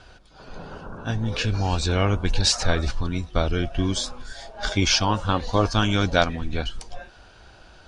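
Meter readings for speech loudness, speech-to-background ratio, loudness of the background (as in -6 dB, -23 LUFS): -24.0 LUFS, 18.0 dB, -42.0 LUFS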